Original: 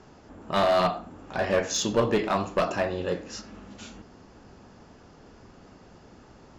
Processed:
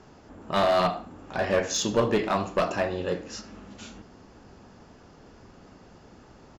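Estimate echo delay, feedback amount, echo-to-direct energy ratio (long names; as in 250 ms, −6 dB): 73 ms, 35%, −19.5 dB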